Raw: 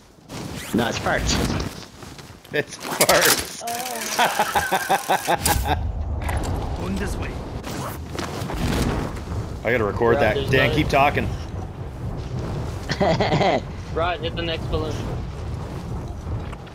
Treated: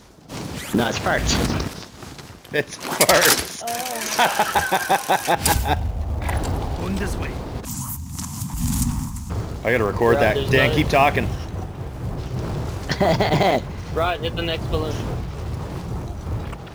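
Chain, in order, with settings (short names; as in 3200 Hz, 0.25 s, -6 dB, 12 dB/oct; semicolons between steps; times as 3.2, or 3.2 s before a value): 7.65–9.3 EQ curve 250 Hz 0 dB, 400 Hz -28 dB, 580 Hz -26 dB, 950 Hz -4 dB, 1500 Hz -15 dB, 4200 Hz -7 dB, 7100 Hz +9 dB; in parallel at -4 dB: short-mantissa float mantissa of 2-bit; on the sum: gain -3 dB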